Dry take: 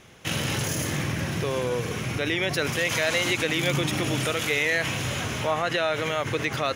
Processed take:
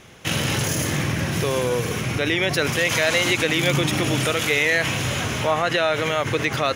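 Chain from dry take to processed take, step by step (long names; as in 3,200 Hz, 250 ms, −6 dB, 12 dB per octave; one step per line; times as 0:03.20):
0:01.33–0:02.00: high-shelf EQ 5,600 Hz → 11,000 Hz +7.5 dB
level +4.5 dB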